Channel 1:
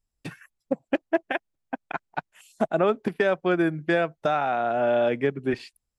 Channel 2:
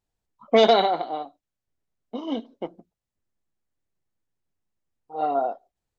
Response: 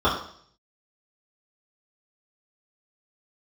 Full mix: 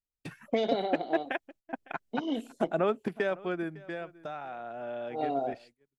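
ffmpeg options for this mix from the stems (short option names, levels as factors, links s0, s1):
-filter_complex "[0:a]volume=0.531,afade=t=out:st=3.03:d=0.8:silence=0.316228,asplit=2[s0][s1];[s1]volume=0.0841[s2];[1:a]equalizer=f=1100:t=o:w=1.1:g=-13.5,acrossover=split=690|2400[s3][s4][s5];[s3]acompressor=threshold=0.0316:ratio=4[s6];[s4]acompressor=threshold=0.0126:ratio=4[s7];[s5]acompressor=threshold=0.00355:ratio=4[s8];[s6][s7][s8]amix=inputs=3:normalize=0,volume=1.12[s9];[s2]aecho=0:1:556:1[s10];[s0][s9][s10]amix=inputs=3:normalize=0,agate=range=0.141:threshold=0.00158:ratio=16:detection=peak"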